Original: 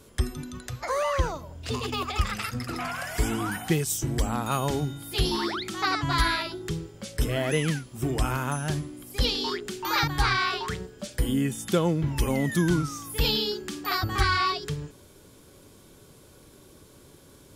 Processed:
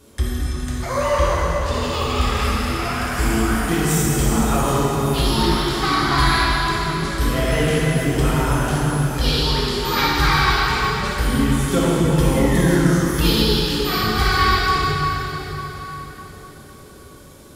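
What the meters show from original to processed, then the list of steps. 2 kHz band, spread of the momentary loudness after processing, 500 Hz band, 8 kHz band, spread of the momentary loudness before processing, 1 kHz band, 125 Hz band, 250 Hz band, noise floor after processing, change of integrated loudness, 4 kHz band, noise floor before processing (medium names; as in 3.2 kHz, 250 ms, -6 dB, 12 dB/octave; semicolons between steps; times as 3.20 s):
+8.5 dB, 8 LU, +9.0 dB, +8.0 dB, 10 LU, +9.5 dB, +9.0 dB, +9.5 dB, -42 dBFS, +8.5 dB, +8.0 dB, -53 dBFS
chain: plate-style reverb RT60 4.8 s, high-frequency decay 0.75×, DRR -8 dB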